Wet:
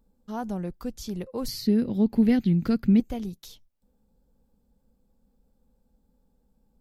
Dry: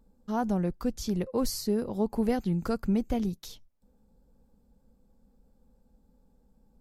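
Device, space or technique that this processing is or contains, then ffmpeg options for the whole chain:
presence and air boost: -filter_complex "[0:a]asettb=1/sr,asplit=3[a][b][c];[a]atrim=end=1.484[d];[b]atrim=start=1.48:end=3,asetpts=PTS-STARTPTS,afade=t=in:d=0.004:c=qsin,afade=t=out:st=1.516:d=0.004:c=qsin,equalizer=f=125:t=o:w=1:g=9,equalizer=f=250:t=o:w=1:g=11,equalizer=f=1k:t=o:w=1:g=-6,equalizer=f=2k:t=o:w=1:g=9,equalizer=f=4k:t=o:w=1:g=7,equalizer=f=8k:t=o:w=1:g=-8[e];[c]atrim=start=2.996[f];[d][e]acrossfade=d=0.004:c1=hsin:c2=qsin[g];[g][f]acrossfade=d=0.004:c1=qsin:c2=hsin,equalizer=f=3.3k:t=o:w=0.77:g=3,highshelf=f=11k:g=6,volume=-3.5dB"

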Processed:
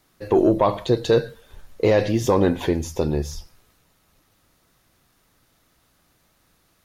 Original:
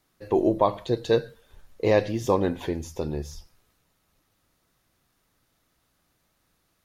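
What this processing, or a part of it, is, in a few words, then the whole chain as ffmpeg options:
soft clipper into limiter: -af "asoftclip=type=tanh:threshold=-9dB,alimiter=limit=-16dB:level=0:latency=1:release=13,volume=7.5dB"

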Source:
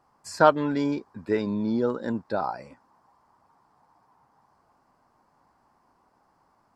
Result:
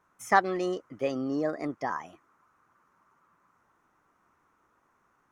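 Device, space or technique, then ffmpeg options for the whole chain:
nightcore: -af "asetrate=56007,aresample=44100,volume=-4dB"

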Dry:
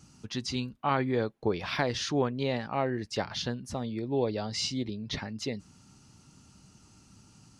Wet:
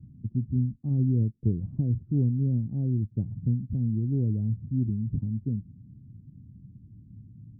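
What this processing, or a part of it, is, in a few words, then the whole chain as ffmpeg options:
the neighbour's flat through the wall: -af "lowpass=f=250:w=0.5412,lowpass=f=250:w=1.3066,equalizer=f=110:t=o:w=0.83:g=8,volume=6dB"

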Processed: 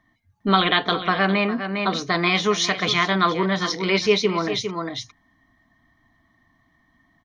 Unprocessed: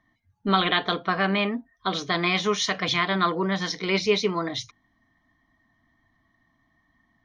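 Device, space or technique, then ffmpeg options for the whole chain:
ducked delay: -filter_complex "[0:a]asettb=1/sr,asplit=3[a][b][c];[a]atrim=end=1.254[d];[b]atrim=start=1.25:end=2.25,asetpts=PTS-STARTPTS,afade=t=in:d=0.004:c=qsin,afade=t=out:st=0.996:d=0.004:c=qsin,bandreject=f=3.3k:w=5.8[e];[c]atrim=start=2.246[f];[d][e]acrossfade=d=0.004:c1=hsin:c2=qsin[g];[g][f]acrossfade=d=0.004:c1=qsin:c2=hsin,asplit=3[h][i][j];[i]adelay=405,volume=-3.5dB[k];[j]apad=whole_len=337262[l];[k][l]sidechaincompress=threshold=-33dB:ratio=4:attack=32:release=390[m];[h][m]amix=inputs=2:normalize=0,volume=3.5dB"

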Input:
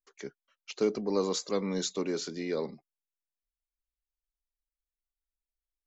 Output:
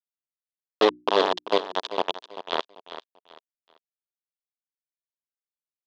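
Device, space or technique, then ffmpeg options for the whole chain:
hand-held game console: -filter_complex "[0:a]acrusher=bits=3:mix=0:aa=0.000001,highpass=410,equalizer=f=430:t=q:w=4:g=4,equalizer=f=670:t=q:w=4:g=5,equalizer=f=960:t=q:w=4:g=5,equalizer=f=1.4k:t=q:w=4:g=-4,equalizer=f=2.2k:t=q:w=4:g=-9,equalizer=f=3.4k:t=q:w=4:g=7,lowpass=f=4k:w=0.5412,lowpass=f=4k:w=1.3066,asettb=1/sr,asplit=3[a][b][c];[a]atrim=end=0.874[d];[b]atrim=start=0.87:end=1.39,asetpts=PTS-STARTPTS,afade=t=in:d=0.004:c=qsin,afade=t=out:st=0.516:d=0.004:c=qsin,bandreject=f=60:t=h:w=6,bandreject=f=120:t=h:w=6,bandreject=f=180:t=h:w=6,bandreject=f=240:t=h:w=6,bandreject=f=300:t=h:w=6,bandreject=f=360:t=h:w=6[e];[c]atrim=start=1.386[f];[d][e]acrossfade=d=0.004:c1=hsin:c2=qsin[g];[g][f]acrossfade=d=0.004:c1=qsin:c2=hsin,aecho=1:1:390|780|1170:0.237|0.0664|0.0186,volume=7.5dB"

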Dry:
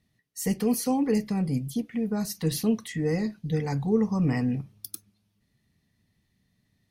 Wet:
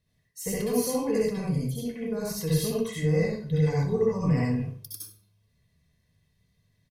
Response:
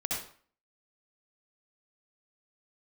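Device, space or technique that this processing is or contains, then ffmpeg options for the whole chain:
microphone above a desk: -filter_complex "[0:a]aecho=1:1:1.9:0.63[a];[1:a]atrim=start_sample=2205[b];[a][b]afir=irnorm=-1:irlink=0,volume=-5dB"

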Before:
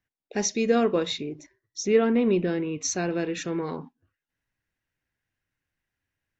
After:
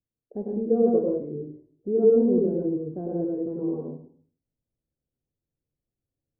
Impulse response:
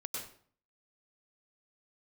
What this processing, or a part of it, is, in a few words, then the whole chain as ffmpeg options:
next room: -filter_complex "[0:a]lowpass=f=610:w=0.5412,lowpass=f=610:w=1.3066[a];[1:a]atrim=start_sample=2205[b];[a][b]afir=irnorm=-1:irlink=0"

